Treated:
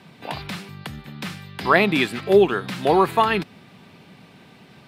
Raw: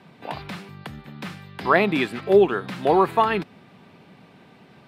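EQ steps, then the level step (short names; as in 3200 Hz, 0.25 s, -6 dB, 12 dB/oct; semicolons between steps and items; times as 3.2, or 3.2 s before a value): low shelf 230 Hz +5.5 dB; high shelf 2200 Hz +9.5 dB; -1.0 dB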